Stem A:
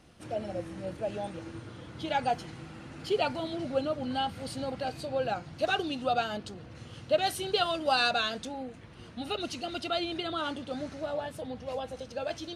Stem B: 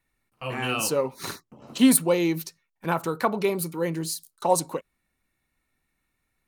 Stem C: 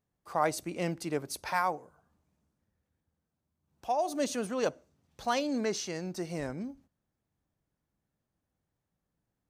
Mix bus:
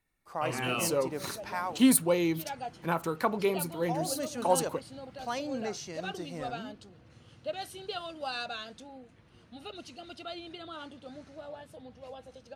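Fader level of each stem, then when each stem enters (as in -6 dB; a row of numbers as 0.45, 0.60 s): -10.0, -4.5, -5.0 dB; 0.35, 0.00, 0.00 s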